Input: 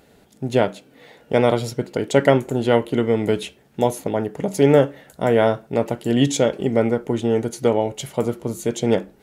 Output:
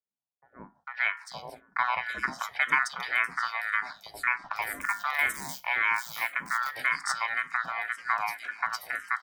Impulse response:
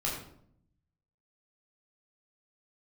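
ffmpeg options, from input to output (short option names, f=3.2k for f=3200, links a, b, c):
-filter_complex "[0:a]aeval=exprs='if(lt(val(0),0),0.708*val(0),val(0))':c=same,aecho=1:1:1.3:0.4,aeval=exprs='val(0)*sin(2*PI*1600*n/s)':c=same,highpass=f=210:p=1,equalizer=f=700:t=o:w=0.32:g=3,asettb=1/sr,asplit=3[a][b][c];[a]atrim=end=3.874[d];[b]atrim=start=3.87:end=6.05,asetpts=PTS-STARTPTS,afade=t=in:d=0.004:c=qsin,afade=t=out:st=2.176:d=0.004:c=qsin,acrusher=bits=3:mode=log:mix=0:aa=0.000001[e];[c]atrim=start=6.046[f];[d][e]acrossfade=d=0.004:c1=hsin:c2=qsin[g];[g][f]acrossfade=d=0.004:c1=qsin:c2=hsin,acompressor=threshold=-36dB:ratio=1.5,agate=range=-32dB:threshold=-47dB:ratio=16:detection=peak,acrossover=split=620|3700[h][i][j];[i]adelay=450[k];[j]adelay=750[l];[h][k][l]amix=inputs=3:normalize=0,asplit=2[m][n];[n]afreqshift=-1.9[o];[m][o]amix=inputs=2:normalize=1,volume=4.5dB"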